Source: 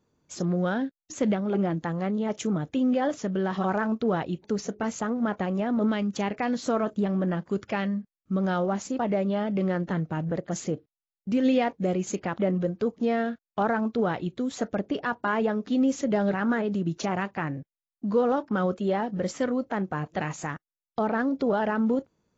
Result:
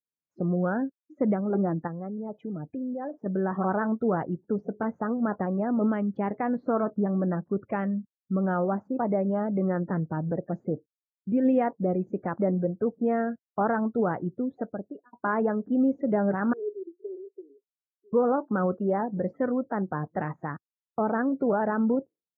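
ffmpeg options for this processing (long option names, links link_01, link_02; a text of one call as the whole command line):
ffmpeg -i in.wav -filter_complex "[0:a]asettb=1/sr,asplit=3[link_01][link_02][link_03];[link_01]atrim=end=1.874[link_04];[link_02]atrim=start=1.87:end=3.26,asetpts=PTS-STARTPTS,afade=type=in:duration=0.004:curve=qsin,afade=type=out:start_time=1.386:duration=0.004:curve=qsin,acompressor=threshold=-34dB:ratio=2.5:attack=3.2:release=140:knee=1:detection=peak[link_05];[link_03]atrim=start=3.256[link_06];[link_04][link_05]acrossfade=duration=0.004:curve1=hsin:curve2=qsin[link_07];[link_07][link_06]acrossfade=duration=0.004:curve1=qsin:curve2=hsin,asettb=1/sr,asplit=3[link_08][link_09][link_10];[link_08]atrim=end=16.534[link_11];[link_09]atrim=start=16.53:end=18.13,asetpts=PTS-STARTPTS,afade=type=in:duration=0.004:curve=qsin,afade=type=out:start_time=1.596:duration=0.004:curve=qsin,asuperpass=centerf=400:order=4:qfactor=5[link_12];[link_10]atrim=start=18.126[link_13];[link_11][link_12]acrossfade=duration=0.004:curve1=hsin:curve2=qsin[link_14];[link_14][link_13]acrossfade=duration=0.004:curve1=qsin:curve2=hsin,asplit=2[link_15][link_16];[link_15]atrim=end=15.13,asetpts=PTS-STARTPTS,afade=type=out:start_time=14.4:duration=0.73[link_17];[link_16]atrim=start=15.13,asetpts=PTS-STARTPTS,afade=type=in:duration=0.004:curve=hsin[link_18];[link_17][link_18]concat=n=2:v=0:a=1,highpass=84,afftdn=noise_reduction=36:noise_floor=-38,lowpass=frequency=1700:width=0.5412,lowpass=frequency=1700:width=1.3066" out.wav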